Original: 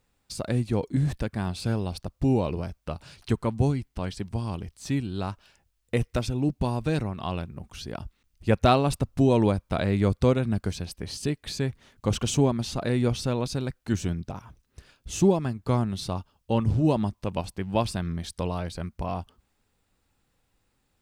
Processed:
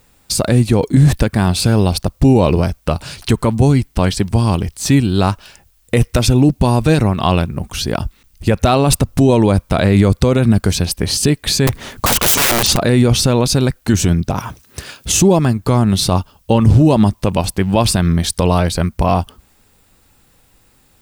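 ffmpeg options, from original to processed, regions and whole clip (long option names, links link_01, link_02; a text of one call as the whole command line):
ffmpeg -i in.wav -filter_complex "[0:a]asettb=1/sr,asplit=3[link_01][link_02][link_03];[link_01]atrim=end=11.674[link_04];[link_02]atrim=start=11.67:end=12.77,asetpts=PTS-STARTPTS,afade=type=in:duration=0.004:curve=qsin,afade=type=out:start_time=1.096:duration=0.004:curve=qsin,equalizer=frequency=580:width=0.34:gain=3.5,acontrast=52,aeval=exprs='(mod(7.94*val(0)+1,2)-1)/7.94':channel_layout=same[link_05];[link_03]atrim=start=12.766[link_06];[link_04][link_05]acrossfade=duration=0.004:curve1=hsin:curve2=qsin[link_07];[link_07][link_06]acrossfade=duration=0.004:curve1=qsin:curve2=hsin,asettb=1/sr,asplit=3[link_08][link_09][link_10];[link_08]atrim=end=14.384[link_11];[link_09]atrim=start=14.38:end=15.12,asetpts=PTS-STARTPTS,afade=type=in:duration=0.004:curve=qsin,afade=type=out:start_time=0.736:duration=0.004:curve=qsin,highpass=84,lowshelf=frequency=350:gain=-4,acontrast=75[link_12];[link_10]atrim=start=15.116[link_13];[link_11][link_12]acrossfade=duration=0.004:curve1=hsin:curve2=qsin[link_14];[link_14][link_13]acrossfade=duration=0.004:curve1=qsin:curve2=hsin,highshelf=frequency=9100:gain=9.5,alimiter=level_in=18dB:limit=-1dB:release=50:level=0:latency=1,volume=-1dB" out.wav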